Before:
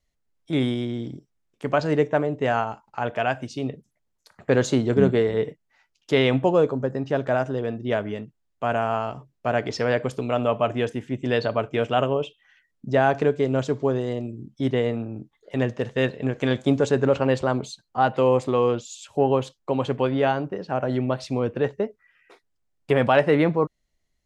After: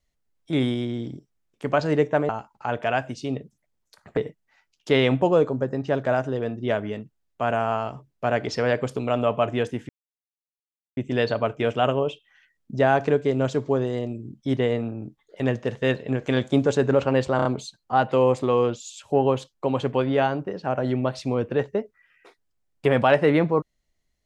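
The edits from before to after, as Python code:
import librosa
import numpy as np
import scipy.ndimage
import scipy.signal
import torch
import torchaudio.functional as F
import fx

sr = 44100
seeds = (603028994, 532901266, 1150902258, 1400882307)

y = fx.edit(x, sr, fx.cut(start_s=2.29, length_s=0.33),
    fx.cut(start_s=4.5, length_s=0.89),
    fx.insert_silence(at_s=11.11, length_s=1.08),
    fx.stutter(start_s=17.5, slice_s=0.03, count=4), tone=tone)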